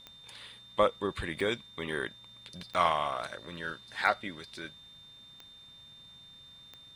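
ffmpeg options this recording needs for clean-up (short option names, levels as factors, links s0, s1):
-af "adeclick=t=4,bandreject=f=3600:w=30"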